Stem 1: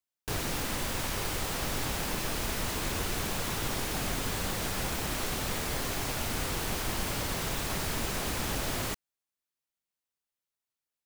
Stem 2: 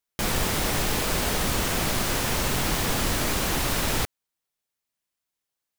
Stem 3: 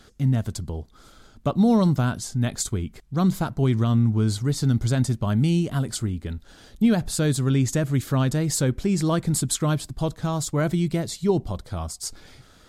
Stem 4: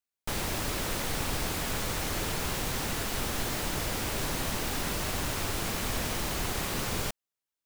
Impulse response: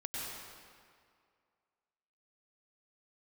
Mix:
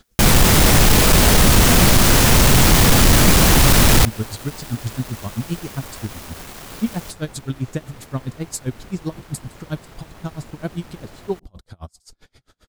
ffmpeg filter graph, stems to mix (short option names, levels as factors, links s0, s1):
-filter_complex "[0:a]highshelf=f=3000:g=-10.5,aeval=exprs='sgn(val(0))*max(abs(val(0))-0.00531,0)':c=same,adelay=2450,volume=0.473[s0];[1:a]bass=f=250:g=6,treble=f=4000:g=2,aeval=exprs='0.398*sin(PI/2*2*val(0)/0.398)':c=same,volume=1.26[s1];[2:a]aeval=exprs='val(0)*pow(10,-36*(0.5-0.5*cos(2*PI*7.6*n/s))/20)':c=same,volume=1.06[s2];[3:a]acrossover=split=480|1600[s3][s4][s5];[s3]acompressor=threshold=0.01:ratio=4[s6];[s4]acompressor=threshold=0.00794:ratio=4[s7];[s5]acompressor=threshold=0.00794:ratio=4[s8];[s6][s7][s8]amix=inputs=3:normalize=0,acrusher=bits=5:mix=0:aa=0.000001,volume=0.944[s9];[s0][s1][s2][s9]amix=inputs=4:normalize=0"